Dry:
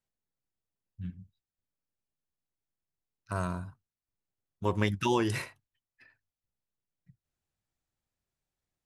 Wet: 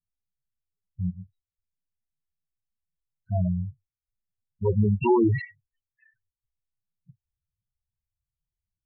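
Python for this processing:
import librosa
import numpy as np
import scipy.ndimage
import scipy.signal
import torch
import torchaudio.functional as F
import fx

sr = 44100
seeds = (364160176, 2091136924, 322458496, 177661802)

y = fx.leveller(x, sr, passes=1)
y = fx.spec_topn(y, sr, count=4)
y = fx.env_lowpass(y, sr, base_hz=1500.0, full_db=-27.0)
y = y * librosa.db_to_amplitude(7.0)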